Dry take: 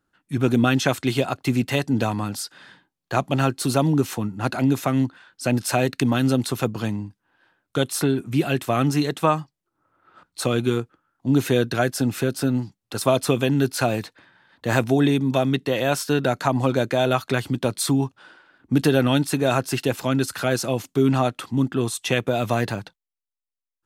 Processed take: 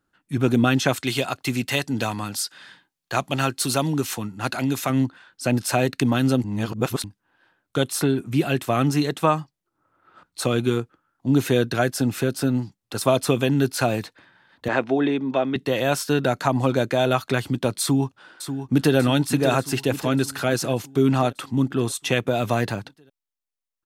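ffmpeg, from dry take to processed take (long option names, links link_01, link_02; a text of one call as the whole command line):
ffmpeg -i in.wav -filter_complex "[0:a]asettb=1/sr,asplit=3[link_01][link_02][link_03];[link_01]atrim=end=0.964[link_04];[link_02]atrim=start=0.96:end=4.9,asetpts=PTS-STARTPTS,afade=type=in:duration=0.004:curve=qsin,afade=type=out:start_time=3.936:duration=0.004:curve=qsin,tiltshelf=frequency=1200:gain=-4.5[link_05];[link_03]atrim=start=4.896[link_06];[link_04][link_05]acrossfade=duration=0.004:curve1=hsin:curve2=qsin[link_07];[link_07][link_06]acrossfade=duration=0.004:curve1=qsin:curve2=hsin,asettb=1/sr,asplit=3[link_08][link_09][link_10];[link_08]atrim=end=14.684[link_11];[link_09]atrim=start=14.68:end=15.56,asetpts=PTS-STARTPTS,afade=type=in:duration=0.004:curve=qsin,afade=type=out:start_time=0.876:duration=0.004:curve=qsin,highpass=270,lowpass=2800[link_12];[link_10]atrim=start=15.556[link_13];[link_11][link_12]acrossfade=duration=0.004:curve1=hsin:curve2=qsin[link_14];[link_14][link_13]acrossfade=duration=0.004:curve1=qsin:curve2=hsin,asplit=2[link_15][link_16];[link_16]afade=type=in:start_time=17.81:duration=0.01,afade=type=out:start_time=18.96:duration=0.01,aecho=0:1:590|1180|1770|2360|2950|3540|4130:0.354813|0.212888|0.127733|0.0766397|0.0459838|0.0275903|0.0165542[link_17];[link_15][link_17]amix=inputs=2:normalize=0,asplit=3[link_18][link_19][link_20];[link_18]atrim=end=6.442[link_21];[link_19]atrim=start=6.438:end=7.042,asetpts=PTS-STARTPTS,areverse[link_22];[link_20]atrim=start=7.038[link_23];[link_21][link_22]acrossfade=duration=0.004:curve1=hsin:curve2=hsin[link_24];[link_24][link_23]acrossfade=duration=0.004:curve1=hsin:curve2=hsin" out.wav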